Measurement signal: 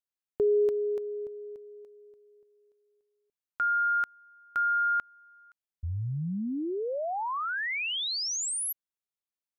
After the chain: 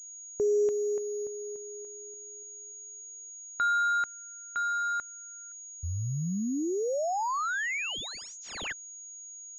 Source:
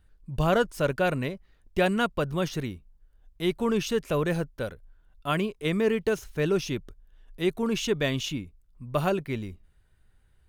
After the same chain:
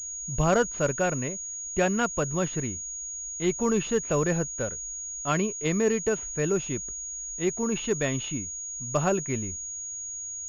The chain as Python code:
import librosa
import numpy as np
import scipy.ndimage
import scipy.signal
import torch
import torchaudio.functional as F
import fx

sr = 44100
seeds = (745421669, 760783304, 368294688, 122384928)

y = fx.rider(x, sr, range_db=4, speed_s=2.0)
y = fx.pwm(y, sr, carrier_hz=6700.0)